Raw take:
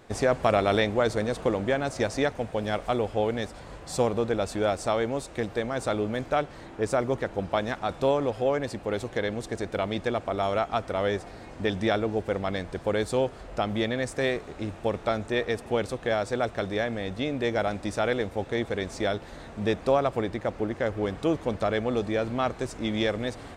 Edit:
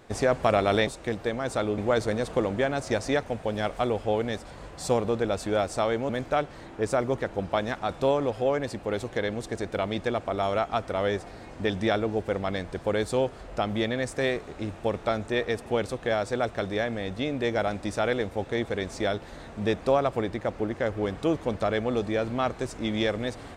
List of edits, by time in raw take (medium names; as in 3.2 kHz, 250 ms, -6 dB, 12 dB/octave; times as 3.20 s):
5.18–6.09 s: move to 0.87 s